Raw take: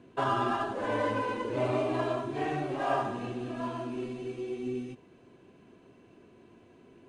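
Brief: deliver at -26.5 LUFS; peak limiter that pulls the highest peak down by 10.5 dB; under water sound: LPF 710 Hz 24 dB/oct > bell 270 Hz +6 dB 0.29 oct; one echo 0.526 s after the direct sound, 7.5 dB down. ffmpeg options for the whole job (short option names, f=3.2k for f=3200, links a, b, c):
-af "alimiter=level_in=3.5dB:limit=-24dB:level=0:latency=1,volume=-3.5dB,lowpass=f=710:w=0.5412,lowpass=f=710:w=1.3066,equalizer=f=270:t=o:w=0.29:g=6,aecho=1:1:526:0.422,volume=10dB"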